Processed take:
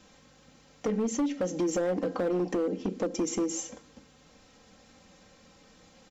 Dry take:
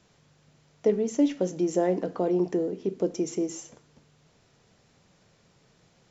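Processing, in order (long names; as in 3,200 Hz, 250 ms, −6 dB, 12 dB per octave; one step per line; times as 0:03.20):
comb filter 3.8 ms, depth 82%
in parallel at −2.5 dB: brickwall limiter −20 dBFS, peak gain reduction 11 dB
on the sum: downward compressor 4 to 1, threshold −23 dBFS, peak gain reduction 10.5 dB
hard clipping −22.5 dBFS, distortion −13 dB
level −1 dB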